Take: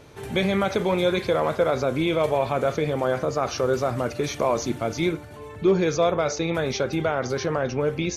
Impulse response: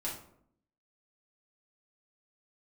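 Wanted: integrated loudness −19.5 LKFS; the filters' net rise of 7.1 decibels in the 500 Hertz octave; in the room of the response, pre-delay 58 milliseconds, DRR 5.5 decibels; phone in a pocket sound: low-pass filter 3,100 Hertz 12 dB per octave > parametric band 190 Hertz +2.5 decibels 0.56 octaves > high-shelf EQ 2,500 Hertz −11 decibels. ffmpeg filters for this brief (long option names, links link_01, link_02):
-filter_complex "[0:a]equalizer=frequency=500:width_type=o:gain=9,asplit=2[link_01][link_02];[1:a]atrim=start_sample=2205,adelay=58[link_03];[link_02][link_03]afir=irnorm=-1:irlink=0,volume=-7.5dB[link_04];[link_01][link_04]amix=inputs=2:normalize=0,lowpass=3100,equalizer=frequency=190:width_type=o:width=0.56:gain=2.5,highshelf=frequency=2500:gain=-11,volume=-2dB"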